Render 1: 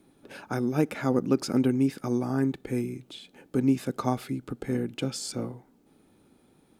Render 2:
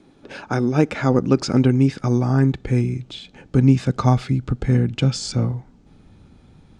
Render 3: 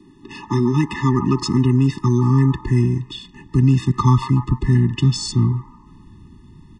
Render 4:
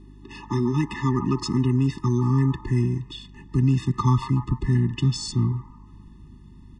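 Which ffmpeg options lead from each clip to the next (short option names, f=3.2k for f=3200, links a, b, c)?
-af "lowpass=f=7.1k:w=0.5412,lowpass=f=7.1k:w=1.3066,asubboost=boost=7.5:cutoff=120,volume=8.5dB"
-filter_complex "[0:a]acrossover=split=120|660|1500[a][b][c][d];[b]alimiter=limit=-16dB:level=0:latency=1[e];[c]asplit=7[f][g][h][i][j][k][l];[g]adelay=146,afreqshift=46,volume=-4dB[m];[h]adelay=292,afreqshift=92,volume=-10.4dB[n];[i]adelay=438,afreqshift=138,volume=-16.8dB[o];[j]adelay=584,afreqshift=184,volume=-23.1dB[p];[k]adelay=730,afreqshift=230,volume=-29.5dB[q];[l]adelay=876,afreqshift=276,volume=-35.9dB[r];[f][m][n][o][p][q][r]amix=inputs=7:normalize=0[s];[a][e][s][d]amix=inputs=4:normalize=0,afftfilt=real='re*eq(mod(floor(b*sr/1024/420),2),0)':imag='im*eq(mod(floor(b*sr/1024/420),2),0)':win_size=1024:overlap=0.75,volume=5dB"
-af "aeval=exprs='val(0)+0.01*(sin(2*PI*50*n/s)+sin(2*PI*2*50*n/s)/2+sin(2*PI*3*50*n/s)/3+sin(2*PI*4*50*n/s)/4+sin(2*PI*5*50*n/s)/5)':c=same,volume=-5.5dB"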